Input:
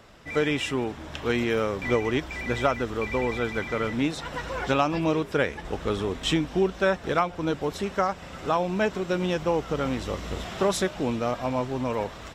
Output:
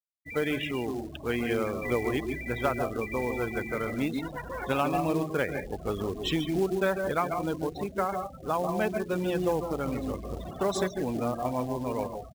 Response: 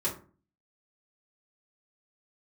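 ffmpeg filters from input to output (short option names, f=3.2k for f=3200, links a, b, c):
-filter_complex "[0:a]asplit=2[a][b];[1:a]atrim=start_sample=2205,asetrate=83790,aresample=44100,adelay=137[c];[b][c]afir=irnorm=-1:irlink=0,volume=-7.5dB[d];[a][d]amix=inputs=2:normalize=0,afftfilt=real='re*gte(hypot(re,im),0.0355)':imag='im*gte(hypot(re,im),0.0355)':win_size=1024:overlap=0.75,acrusher=bits=5:mode=log:mix=0:aa=0.000001,volume=-4.5dB"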